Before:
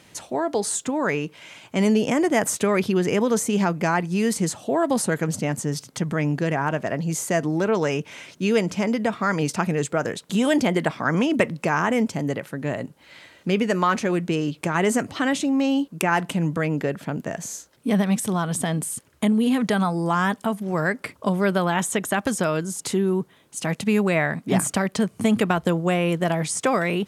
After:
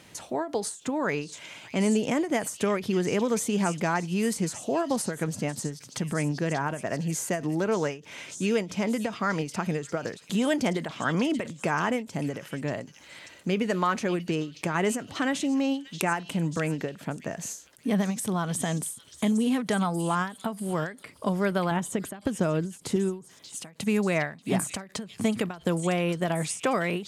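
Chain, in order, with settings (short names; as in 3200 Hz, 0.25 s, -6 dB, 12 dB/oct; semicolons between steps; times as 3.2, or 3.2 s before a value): 21.71–22.96 tilt shelf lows +5.5 dB, about 680 Hz; in parallel at -1 dB: compressor, threshold -33 dBFS, peak gain reduction 17.5 dB; on the sum: delay with a stepping band-pass 0.586 s, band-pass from 4000 Hz, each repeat 0.7 oct, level -5 dB; ending taper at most 160 dB/s; gain -6 dB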